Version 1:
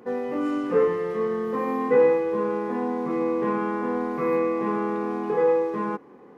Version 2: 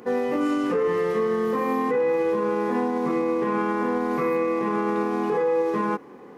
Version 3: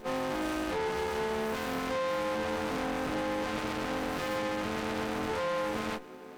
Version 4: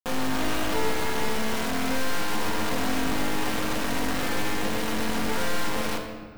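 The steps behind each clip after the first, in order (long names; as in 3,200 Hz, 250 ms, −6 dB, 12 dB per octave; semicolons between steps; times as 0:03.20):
high-shelf EQ 2,700 Hz +7.5 dB; brickwall limiter −20 dBFS, peak gain reduction 11 dB; level +4 dB
every partial snapped to a pitch grid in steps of 3 semitones; tube saturation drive 31 dB, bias 0.65; windowed peak hold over 17 samples; level +2.5 dB
bit reduction 5 bits; rectangular room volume 1,700 cubic metres, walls mixed, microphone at 1.7 metres; bad sample-rate conversion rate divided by 2×, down none, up hold; level +2 dB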